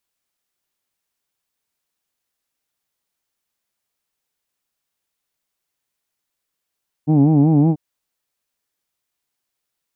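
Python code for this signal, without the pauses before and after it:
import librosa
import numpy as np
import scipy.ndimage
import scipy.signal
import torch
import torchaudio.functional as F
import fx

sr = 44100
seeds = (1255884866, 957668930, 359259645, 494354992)

y = fx.formant_vowel(sr, seeds[0], length_s=0.69, hz=146.0, glide_st=1.0, vibrato_hz=5.3, vibrato_st=1.2, f1_hz=260.0, f2_hz=800.0, f3_hz=2400.0)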